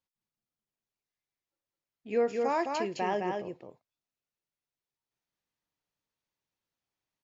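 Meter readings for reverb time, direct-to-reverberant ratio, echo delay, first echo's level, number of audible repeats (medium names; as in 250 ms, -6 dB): no reverb, no reverb, 212 ms, -4.0 dB, 1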